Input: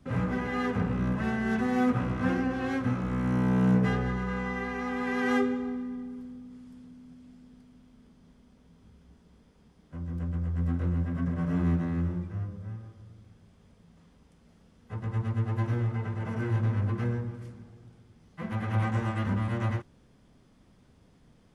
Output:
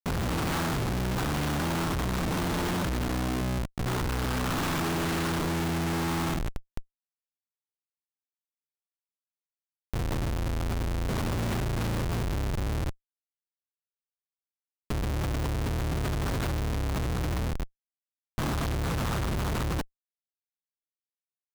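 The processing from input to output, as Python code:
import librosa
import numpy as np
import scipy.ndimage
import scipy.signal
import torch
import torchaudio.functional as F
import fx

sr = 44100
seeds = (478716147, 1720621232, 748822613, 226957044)

y = fx.cycle_switch(x, sr, every=3, mode='inverted')
y = fx.high_shelf(y, sr, hz=4500.0, db=-9.0)
y = fx.over_compress(y, sr, threshold_db=-30.0, ratio=-0.5)
y = fx.quant_companded(y, sr, bits=2)
y = fx.fixed_phaser(y, sr, hz=2100.0, stages=6)
y = fx.schmitt(y, sr, flips_db=-33.5)
y = y * librosa.db_to_amplitude(2.0)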